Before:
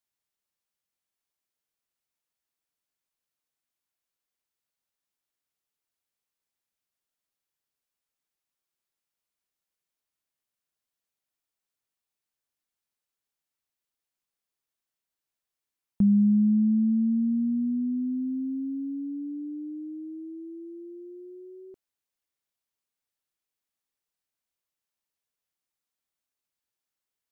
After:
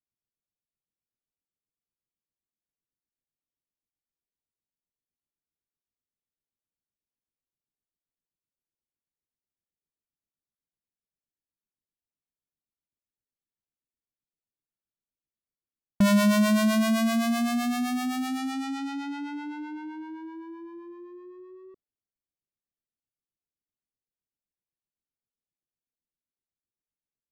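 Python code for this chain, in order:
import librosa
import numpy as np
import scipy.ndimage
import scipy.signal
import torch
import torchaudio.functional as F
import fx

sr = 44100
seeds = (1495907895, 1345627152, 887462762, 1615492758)

y = fx.halfwave_hold(x, sr)
y = fx.harmonic_tremolo(y, sr, hz=7.8, depth_pct=70, crossover_hz=430.0)
y = fx.env_lowpass(y, sr, base_hz=350.0, full_db=-26.5)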